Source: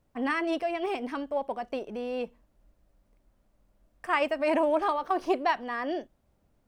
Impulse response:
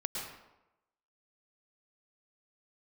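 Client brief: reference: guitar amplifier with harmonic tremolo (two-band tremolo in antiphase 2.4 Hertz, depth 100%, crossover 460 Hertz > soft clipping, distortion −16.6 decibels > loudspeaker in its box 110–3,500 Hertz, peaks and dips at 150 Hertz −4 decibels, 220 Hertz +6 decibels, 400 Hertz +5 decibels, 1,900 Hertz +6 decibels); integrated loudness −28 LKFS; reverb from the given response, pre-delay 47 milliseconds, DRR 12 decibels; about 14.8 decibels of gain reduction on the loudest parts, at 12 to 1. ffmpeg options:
-filter_complex "[0:a]acompressor=threshold=-36dB:ratio=12,asplit=2[link_01][link_02];[1:a]atrim=start_sample=2205,adelay=47[link_03];[link_02][link_03]afir=irnorm=-1:irlink=0,volume=-15dB[link_04];[link_01][link_04]amix=inputs=2:normalize=0,acrossover=split=460[link_05][link_06];[link_05]aeval=exprs='val(0)*(1-1/2+1/2*cos(2*PI*2.4*n/s))':channel_layout=same[link_07];[link_06]aeval=exprs='val(0)*(1-1/2-1/2*cos(2*PI*2.4*n/s))':channel_layout=same[link_08];[link_07][link_08]amix=inputs=2:normalize=0,asoftclip=threshold=-38.5dB,highpass=110,equalizer=frequency=150:width_type=q:width=4:gain=-4,equalizer=frequency=220:width_type=q:width=4:gain=6,equalizer=frequency=400:width_type=q:width=4:gain=5,equalizer=frequency=1900:width_type=q:width=4:gain=6,lowpass=frequency=3500:width=0.5412,lowpass=frequency=3500:width=1.3066,volume=18.5dB"

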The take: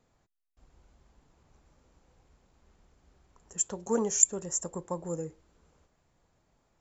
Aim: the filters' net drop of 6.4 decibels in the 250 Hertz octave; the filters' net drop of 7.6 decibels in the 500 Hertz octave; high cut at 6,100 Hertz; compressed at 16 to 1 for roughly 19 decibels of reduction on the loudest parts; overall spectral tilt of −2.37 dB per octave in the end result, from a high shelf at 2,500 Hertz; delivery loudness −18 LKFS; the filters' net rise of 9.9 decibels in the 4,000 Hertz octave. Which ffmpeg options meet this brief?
ffmpeg -i in.wav -af "lowpass=6100,equalizer=frequency=250:width_type=o:gain=-7,equalizer=frequency=500:width_type=o:gain=-7,highshelf=frequency=2500:gain=8.5,equalizer=frequency=4000:width_type=o:gain=8.5,acompressor=threshold=-30dB:ratio=16,volume=18dB" out.wav

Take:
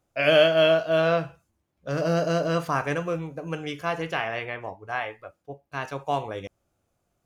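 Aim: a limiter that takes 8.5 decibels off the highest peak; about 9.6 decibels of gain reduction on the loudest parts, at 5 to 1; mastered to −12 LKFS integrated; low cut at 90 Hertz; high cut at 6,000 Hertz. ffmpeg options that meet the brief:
ffmpeg -i in.wav -af "highpass=90,lowpass=6000,acompressor=threshold=-25dB:ratio=5,volume=22.5dB,alimiter=limit=-1dB:level=0:latency=1" out.wav

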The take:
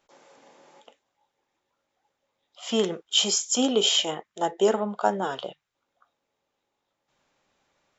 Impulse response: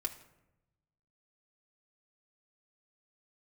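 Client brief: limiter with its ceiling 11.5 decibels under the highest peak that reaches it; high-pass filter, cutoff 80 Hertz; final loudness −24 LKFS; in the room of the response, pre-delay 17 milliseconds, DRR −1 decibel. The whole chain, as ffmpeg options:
-filter_complex "[0:a]highpass=80,alimiter=limit=-19dB:level=0:latency=1,asplit=2[link_01][link_02];[1:a]atrim=start_sample=2205,adelay=17[link_03];[link_02][link_03]afir=irnorm=-1:irlink=0,volume=0.5dB[link_04];[link_01][link_04]amix=inputs=2:normalize=0,volume=1dB"

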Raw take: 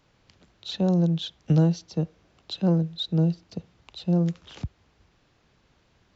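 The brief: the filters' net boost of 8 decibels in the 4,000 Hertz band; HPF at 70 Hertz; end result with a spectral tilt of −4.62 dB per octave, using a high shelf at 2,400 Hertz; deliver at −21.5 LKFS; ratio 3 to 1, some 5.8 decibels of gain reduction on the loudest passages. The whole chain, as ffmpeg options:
ffmpeg -i in.wav -af "highpass=70,highshelf=frequency=2400:gain=4,equalizer=frequency=4000:width_type=o:gain=5.5,acompressor=threshold=-24dB:ratio=3,volume=8dB" out.wav

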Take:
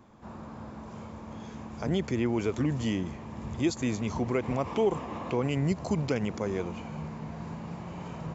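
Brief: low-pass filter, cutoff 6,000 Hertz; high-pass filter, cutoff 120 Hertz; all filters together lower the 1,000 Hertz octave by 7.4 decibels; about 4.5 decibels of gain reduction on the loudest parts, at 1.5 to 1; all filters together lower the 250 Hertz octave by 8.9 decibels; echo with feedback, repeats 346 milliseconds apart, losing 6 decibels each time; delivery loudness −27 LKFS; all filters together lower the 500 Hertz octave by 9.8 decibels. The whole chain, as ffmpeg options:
ffmpeg -i in.wav -af "highpass=120,lowpass=6000,equalizer=frequency=250:width_type=o:gain=-9,equalizer=frequency=500:width_type=o:gain=-8,equalizer=frequency=1000:width_type=o:gain=-6,acompressor=threshold=-43dB:ratio=1.5,aecho=1:1:346|692|1038|1384|1730|2076:0.501|0.251|0.125|0.0626|0.0313|0.0157,volume=14.5dB" out.wav

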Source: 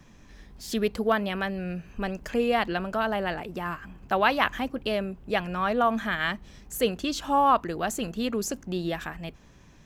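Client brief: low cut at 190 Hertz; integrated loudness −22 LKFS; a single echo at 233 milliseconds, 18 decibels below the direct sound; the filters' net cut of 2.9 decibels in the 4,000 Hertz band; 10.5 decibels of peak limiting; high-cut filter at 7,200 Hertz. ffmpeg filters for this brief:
ffmpeg -i in.wav -af "highpass=190,lowpass=7200,equalizer=frequency=4000:width_type=o:gain=-4,alimiter=limit=-17.5dB:level=0:latency=1,aecho=1:1:233:0.126,volume=8.5dB" out.wav

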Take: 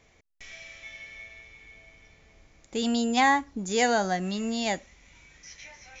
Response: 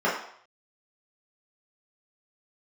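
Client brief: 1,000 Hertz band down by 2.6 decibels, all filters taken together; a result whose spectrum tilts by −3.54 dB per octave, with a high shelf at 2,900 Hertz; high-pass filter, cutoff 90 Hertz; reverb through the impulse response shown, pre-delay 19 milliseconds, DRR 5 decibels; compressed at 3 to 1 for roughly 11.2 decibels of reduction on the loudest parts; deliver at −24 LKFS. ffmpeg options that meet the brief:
-filter_complex "[0:a]highpass=90,equalizer=frequency=1000:width_type=o:gain=-4,highshelf=frequency=2900:gain=3.5,acompressor=threshold=-34dB:ratio=3,asplit=2[link_01][link_02];[1:a]atrim=start_sample=2205,adelay=19[link_03];[link_02][link_03]afir=irnorm=-1:irlink=0,volume=-21dB[link_04];[link_01][link_04]amix=inputs=2:normalize=0,volume=11.5dB"

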